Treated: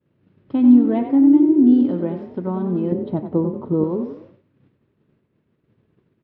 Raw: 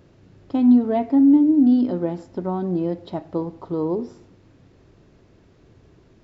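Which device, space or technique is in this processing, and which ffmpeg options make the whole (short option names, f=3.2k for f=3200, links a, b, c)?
frequency-shifting delay pedal into a guitar cabinet: -filter_complex "[0:a]asplit=6[a][b][c][d][e][f];[b]adelay=92,afreqshift=36,volume=-9dB[g];[c]adelay=184,afreqshift=72,volume=-16.7dB[h];[d]adelay=276,afreqshift=108,volume=-24.5dB[i];[e]adelay=368,afreqshift=144,volume=-32.2dB[j];[f]adelay=460,afreqshift=180,volume=-40dB[k];[a][g][h][i][j][k]amix=inputs=6:normalize=0,highpass=91,equalizer=f=140:t=q:w=4:g=4,equalizer=f=220:t=q:w=4:g=5,equalizer=f=720:t=q:w=4:g=-6,lowpass=f=3.4k:w=0.5412,lowpass=f=3.4k:w=1.3066,agate=range=-33dB:threshold=-42dB:ratio=3:detection=peak,asettb=1/sr,asplit=3[l][m][n];[l]atrim=end=2.924[o];[m]atrim=start=2.92:end=3.84,asetpts=PTS-STARTPTS,afade=t=in:d=0.004:c=qsin,afade=t=out:st=0.916:d=0.004:c=qsin,tiltshelf=f=970:g=7[p];[n]atrim=start=3.836[q];[o][p]acrossfade=d=0.004:c1=hsin:c2=qsin[r];[r][q]acrossfade=d=0.004:c1=qsin:c2=hsin"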